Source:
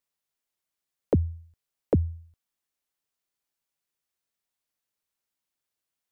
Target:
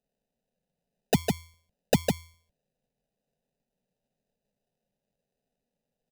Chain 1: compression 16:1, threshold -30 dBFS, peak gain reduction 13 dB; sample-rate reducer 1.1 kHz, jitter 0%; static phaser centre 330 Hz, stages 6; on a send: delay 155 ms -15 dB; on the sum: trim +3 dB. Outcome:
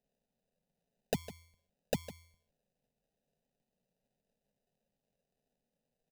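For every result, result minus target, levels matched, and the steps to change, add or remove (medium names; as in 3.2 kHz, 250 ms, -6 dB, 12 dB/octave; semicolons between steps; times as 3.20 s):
compression: peak gain reduction +13 dB; echo-to-direct -11 dB
remove: compression 16:1, threshold -30 dBFS, peak gain reduction 13 dB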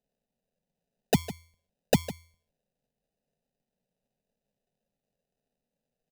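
echo-to-direct -11 dB
change: delay 155 ms -4 dB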